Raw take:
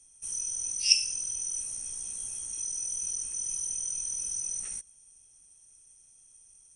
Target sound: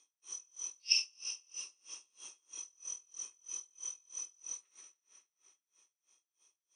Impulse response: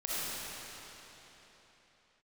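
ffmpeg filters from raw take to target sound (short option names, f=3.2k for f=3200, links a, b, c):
-filter_complex "[0:a]highpass=f=350:w=0.5412,highpass=f=350:w=1.3066,equalizer=f=490:t=q:w=4:g=-4,equalizer=f=700:t=q:w=4:g=-9,equalizer=f=1.1k:t=q:w=4:g=7,equalizer=f=1.6k:t=q:w=4:g=-6,equalizer=f=3.7k:t=q:w=4:g=3,lowpass=f=5.2k:w=0.5412,lowpass=f=5.2k:w=1.3066,asplit=2[a][b];[1:a]atrim=start_sample=2205[c];[b][c]afir=irnorm=-1:irlink=0,volume=-15dB[d];[a][d]amix=inputs=2:normalize=0,aeval=exprs='val(0)*pow(10,-31*(0.5-0.5*cos(2*PI*3.1*n/s))/20)':c=same,volume=1dB"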